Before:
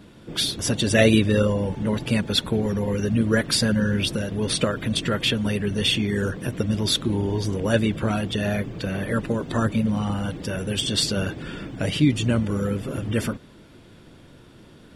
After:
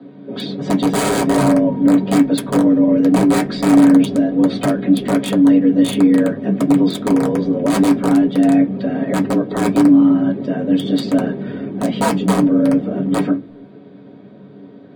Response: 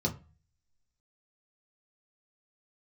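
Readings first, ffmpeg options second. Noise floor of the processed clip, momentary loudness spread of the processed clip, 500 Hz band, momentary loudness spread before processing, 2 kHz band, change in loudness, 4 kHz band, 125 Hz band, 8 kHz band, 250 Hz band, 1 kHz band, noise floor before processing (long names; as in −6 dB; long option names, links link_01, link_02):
−40 dBFS, 8 LU, +6.0 dB, 8 LU, 0.0 dB, +8.5 dB, −5.5 dB, +0.5 dB, 0.0 dB, +12.0 dB, +10.5 dB, −49 dBFS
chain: -filter_complex "[0:a]afreqshift=71,lowpass=frequency=4100:width=0.5412,lowpass=frequency=4100:width=1.3066,aeval=exprs='(mod(5.01*val(0)+1,2)-1)/5.01':channel_layout=same[link_01];[1:a]atrim=start_sample=2205,asetrate=79380,aresample=44100[link_02];[link_01][link_02]afir=irnorm=-1:irlink=0,volume=-2dB"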